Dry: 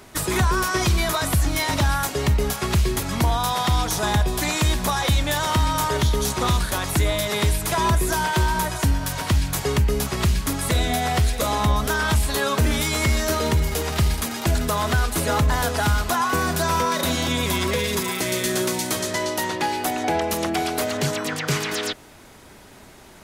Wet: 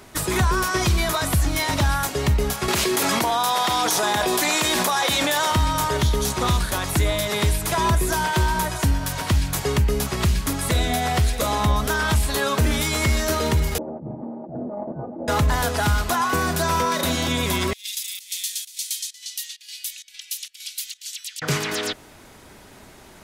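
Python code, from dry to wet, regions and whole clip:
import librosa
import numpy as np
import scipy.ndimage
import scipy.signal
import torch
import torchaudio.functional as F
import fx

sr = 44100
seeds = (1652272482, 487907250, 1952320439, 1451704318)

y = fx.chain(x, sr, fx.highpass(hz=310.0, slope=12),
    fx.env_flatten(amount_pct=100), at=(2.68, 5.52))
y = fx.chain(y, sr, fx.lower_of_two(delay_ms=3.4),
    fx.ellip_bandpass(low_hz=140.0, high_hz=730.0, order=3, stop_db=70),
    fx.over_compress(threshold_db=-30.0, ratio=-0.5), at=(13.78, 15.28))
y = fx.chain(y, sr, fx.cheby2_bandstop(low_hz=130.0, high_hz=640.0, order=4, stop_db=80),
    fx.low_shelf(hz=210.0, db=-12.0),
    fx.volume_shaper(bpm=131, per_beat=1, depth_db=-17, release_ms=119.0, shape='slow start'), at=(17.73, 21.42))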